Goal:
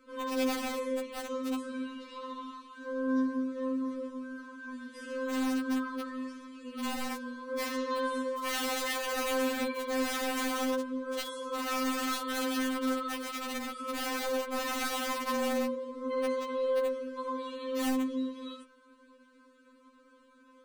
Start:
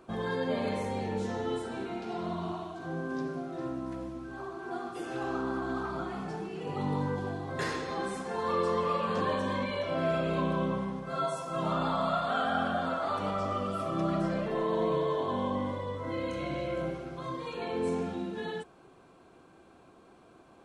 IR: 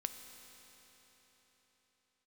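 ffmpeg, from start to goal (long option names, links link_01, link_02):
-af "asuperstop=centerf=790:order=20:qfactor=2.8,aeval=exprs='(mod(16.8*val(0)+1,2)-1)/16.8':channel_layout=same,afftfilt=real='re*3.46*eq(mod(b,12),0)':imag='im*3.46*eq(mod(b,12),0)':win_size=2048:overlap=0.75"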